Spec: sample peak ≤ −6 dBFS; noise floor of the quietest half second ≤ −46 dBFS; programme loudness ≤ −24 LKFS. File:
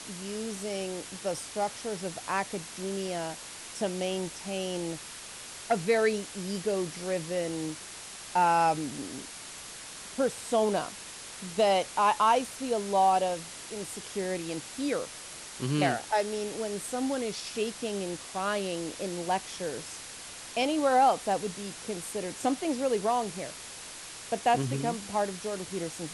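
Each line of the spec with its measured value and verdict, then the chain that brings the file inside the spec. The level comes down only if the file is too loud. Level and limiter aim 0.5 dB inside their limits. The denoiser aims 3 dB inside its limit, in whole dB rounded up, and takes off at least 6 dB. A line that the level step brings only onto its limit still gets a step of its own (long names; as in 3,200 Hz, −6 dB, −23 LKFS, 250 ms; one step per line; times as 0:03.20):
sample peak −12.5 dBFS: in spec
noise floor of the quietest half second −44 dBFS: out of spec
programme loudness −30.5 LKFS: in spec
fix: broadband denoise 6 dB, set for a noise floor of −44 dBFS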